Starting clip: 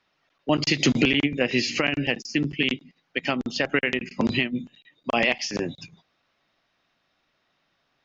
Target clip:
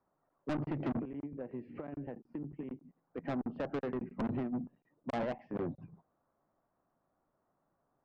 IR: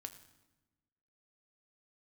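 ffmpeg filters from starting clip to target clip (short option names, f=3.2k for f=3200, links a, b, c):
-filter_complex "[0:a]lowpass=f=1.1k:w=0.5412,lowpass=f=1.1k:w=1.3066,asettb=1/sr,asplit=3[a][b][c];[a]atrim=end=0.994[d];[b]atrim=start=0.99:end=3.18,asetpts=PTS-STARTPTS,afade=t=in:d=0.004:c=qsin,afade=t=out:st=2.186:d=0.004:c=qsin,acompressor=threshold=-35dB:ratio=6[e];[c]atrim=start=3.176[f];[d][e]acrossfade=d=0.004:c1=hsin:c2=qsin[g];[g][f]acrossfade=d=0.004:c1=qsin:c2=hsin,asoftclip=type=tanh:threshold=-27.5dB,volume=-3.5dB"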